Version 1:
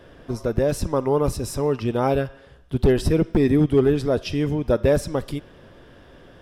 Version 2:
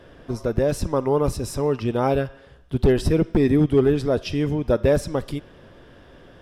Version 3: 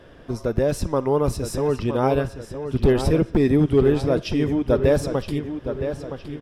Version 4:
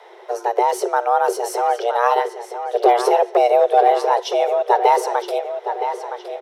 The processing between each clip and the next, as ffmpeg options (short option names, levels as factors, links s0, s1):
-af "highshelf=f=11000:g=-4"
-filter_complex "[0:a]asplit=2[s0][s1];[s1]adelay=966,lowpass=f=4900:p=1,volume=0.355,asplit=2[s2][s3];[s3]adelay=966,lowpass=f=4900:p=1,volume=0.48,asplit=2[s4][s5];[s5]adelay=966,lowpass=f=4900:p=1,volume=0.48,asplit=2[s6][s7];[s7]adelay=966,lowpass=f=4900:p=1,volume=0.48,asplit=2[s8][s9];[s9]adelay=966,lowpass=f=4900:p=1,volume=0.48[s10];[s0][s2][s4][s6][s8][s10]amix=inputs=6:normalize=0"
-af "afreqshift=350,volume=1.41"